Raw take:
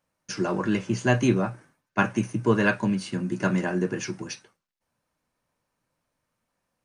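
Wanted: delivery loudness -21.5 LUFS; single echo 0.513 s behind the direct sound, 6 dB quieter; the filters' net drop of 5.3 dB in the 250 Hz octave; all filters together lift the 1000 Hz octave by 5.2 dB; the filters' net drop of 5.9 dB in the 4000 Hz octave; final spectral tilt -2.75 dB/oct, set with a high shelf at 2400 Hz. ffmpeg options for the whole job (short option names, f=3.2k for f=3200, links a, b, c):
-af "equalizer=f=250:t=o:g=-8,equalizer=f=1k:t=o:g=8,highshelf=f=2.4k:g=-4.5,equalizer=f=4k:t=o:g=-5,aecho=1:1:513:0.501,volume=5dB"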